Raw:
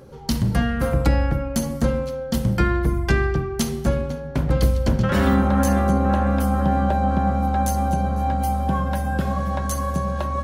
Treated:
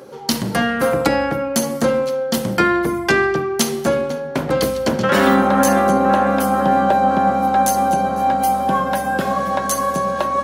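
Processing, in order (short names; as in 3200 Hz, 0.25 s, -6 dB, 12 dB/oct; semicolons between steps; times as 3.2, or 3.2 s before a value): HPF 300 Hz 12 dB/oct; gain +8.5 dB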